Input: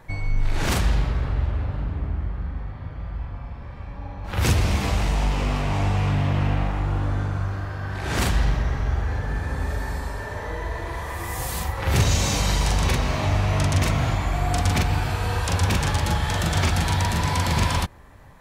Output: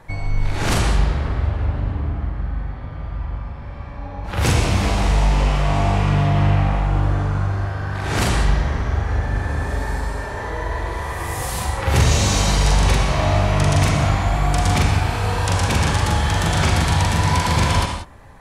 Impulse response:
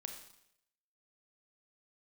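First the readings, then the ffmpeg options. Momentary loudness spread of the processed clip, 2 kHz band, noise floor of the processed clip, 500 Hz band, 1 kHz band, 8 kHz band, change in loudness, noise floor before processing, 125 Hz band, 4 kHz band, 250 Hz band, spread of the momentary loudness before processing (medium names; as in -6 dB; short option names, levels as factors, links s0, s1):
10 LU, +4.0 dB, -31 dBFS, +5.5 dB, +5.5 dB, +4.0 dB, +4.5 dB, -36 dBFS, +4.0 dB, +4.0 dB, +4.5 dB, 10 LU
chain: -filter_complex "[0:a]acrossover=split=1000[s0][s1];[s0]crystalizer=i=8:c=0[s2];[s2][s1]amix=inputs=2:normalize=0[s3];[1:a]atrim=start_sample=2205,atrim=end_sample=4410,asetrate=22491,aresample=44100[s4];[s3][s4]afir=irnorm=-1:irlink=0,volume=1.41"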